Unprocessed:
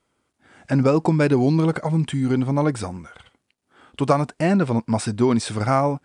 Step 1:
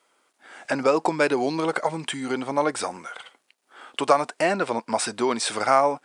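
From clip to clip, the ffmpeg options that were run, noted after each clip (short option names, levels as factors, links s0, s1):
-filter_complex "[0:a]asplit=2[s0][s1];[s1]acompressor=threshold=0.0447:ratio=6,volume=1.41[s2];[s0][s2]amix=inputs=2:normalize=0,highpass=520"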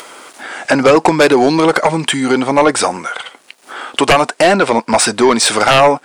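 -af "acompressor=mode=upward:threshold=0.0158:ratio=2.5,aeval=exprs='0.631*sin(PI/2*3.16*val(0)/0.631)':c=same,volume=1.12"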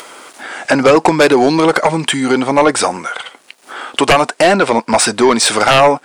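-af anull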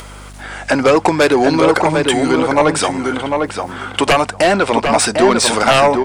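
-filter_complex "[0:a]aeval=exprs='val(0)+0.0251*(sin(2*PI*50*n/s)+sin(2*PI*2*50*n/s)/2+sin(2*PI*3*50*n/s)/3+sin(2*PI*4*50*n/s)/4+sin(2*PI*5*50*n/s)/5)':c=same,asplit=2[s0][s1];[s1]adelay=750,lowpass=f=2400:p=1,volume=0.631,asplit=2[s2][s3];[s3]adelay=750,lowpass=f=2400:p=1,volume=0.17,asplit=2[s4][s5];[s5]adelay=750,lowpass=f=2400:p=1,volume=0.17[s6];[s2][s4][s6]amix=inputs=3:normalize=0[s7];[s0][s7]amix=inputs=2:normalize=0,volume=0.75"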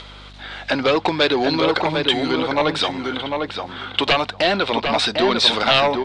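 -af "lowpass=f=3800:t=q:w=4.7,volume=0.447"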